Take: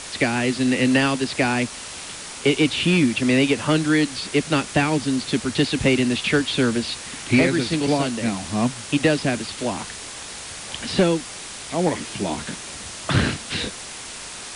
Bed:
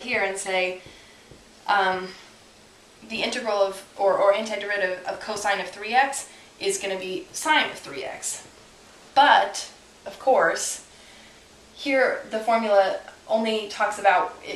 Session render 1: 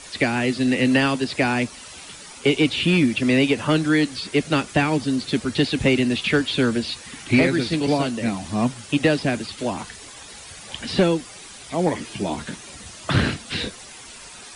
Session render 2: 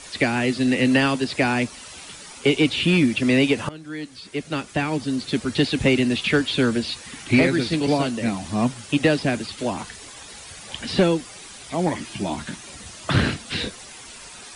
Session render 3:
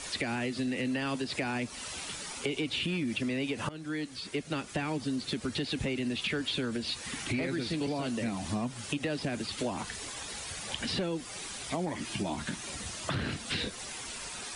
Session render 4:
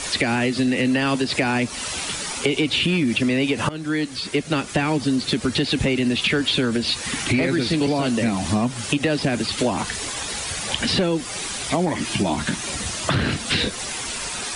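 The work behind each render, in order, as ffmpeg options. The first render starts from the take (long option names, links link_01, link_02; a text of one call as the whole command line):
ffmpeg -i in.wav -af "afftdn=noise_reduction=10:noise_floor=-36" out.wav
ffmpeg -i in.wav -filter_complex "[0:a]asettb=1/sr,asplit=3[link_01][link_02][link_03];[link_01]atrim=end=11.764[link_04];[link_02]atrim=start=11.76:end=12.64,asetpts=PTS-STARTPTS,afade=type=in:duration=0.004:curve=qsin,afade=type=out:start_time=0.876:duration=0.004:curve=qsin,equalizer=frequency=460:width=4.7:gain=-10[link_05];[link_03]atrim=start=12.636[link_06];[link_04][link_05]acrossfade=duration=0.004:curve1=hsin:curve2=qsin[link_07];[link_07][link_06]acrossfade=duration=0.004:curve1=qsin:curve2=hsin,asplit=2[link_08][link_09];[link_08]atrim=end=3.69,asetpts=PTS-STARTPTS,afade=type=out:start_time=3.686:duration=0.004:curve=hsin:silence=0.0707946[link_10];[link_09]atrim=start=3.69,asetpts=PTS-STARTPTS,afade=type=in:duration=1.9:silence=0.0707946[link_11];[link_10][link_11]concat=n=2:v=0:a=1" out.wav
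ffmpeg -i in.wav -af "alimiter=limit=-16.5dB:level=0:latency=1:release=94,acompressor=threshold=-32dB:ratio=3" out.wav
ffmpeg -i in.wav -af "volume=12dB" out.wav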